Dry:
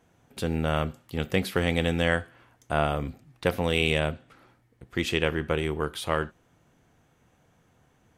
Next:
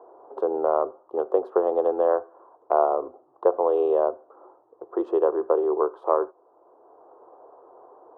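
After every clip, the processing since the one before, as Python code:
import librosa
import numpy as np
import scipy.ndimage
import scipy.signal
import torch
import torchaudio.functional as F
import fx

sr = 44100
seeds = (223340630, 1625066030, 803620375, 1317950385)

y = fx.wiener(x, sr, points=9)
y = scipy.signal.sosfilt(scipy.signal.ellip(3, 1.0, 40, [370.0, 1100.0], 'bandpass', fs=sr, output='sos'), y)
y = fx.band_squash(y, sr, depth_pct=40)
y = F.gain(torch.from_numpy(y), 8.5).numpy()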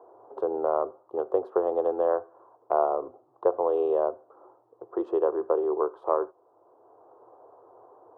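y = fx.peak_eq(x, sr, hz=110.0, db=14.0, octaves=0.56)
y = F.gain(torch.from_numpy(y), -3.5).numpy()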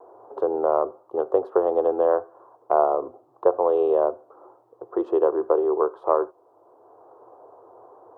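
y = fx.vibrato(x, sr, rate_hz=0.89, depth_cents=22.0)
y = F.gain(torch.from_numpy(y), 4.5).numpy()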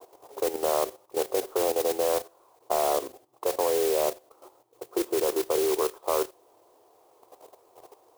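y = fx.mod_noise(x, sr, seeds[0], snr_db=10)
y = fx.level_steps(y, sr, step_db=12)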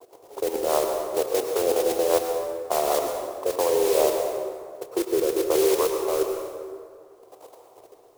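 y = fx.rotary_switch(x, sr, hz=5.0, then_hz=1.1, switch_at_s=3.22)
y = fx.rev_plate(y, sr, seeds[1], rt60_s=2.1, hf_ratio=0.55, predelay_ms=90, drr_db=3.5)
y = F.gain(torch.from_numpy(y), 4.5).numpy()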